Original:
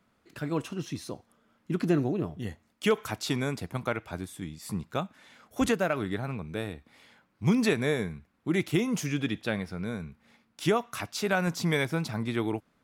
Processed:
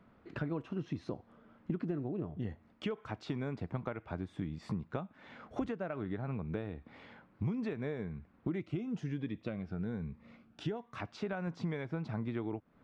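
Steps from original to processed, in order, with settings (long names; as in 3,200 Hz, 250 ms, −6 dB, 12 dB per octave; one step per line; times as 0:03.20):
downward compressor 10 to 1, threshold −41 dBFS, peak gain reduction 21.5 dB
head-to-tape spacing loss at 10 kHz 36 dB
0:08.60–0:10.96: phaser whose notches keep moving one way rising 1.2 Hz
level +8.5 dB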